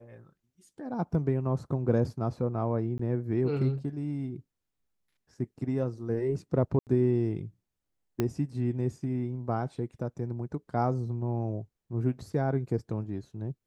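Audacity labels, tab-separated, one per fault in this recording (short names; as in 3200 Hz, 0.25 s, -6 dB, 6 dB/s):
2.980000	2.990000	gap 14 ms
6.790000	6.870000	gap 78 ms
8.200000	8.200000	pop -15 dBFS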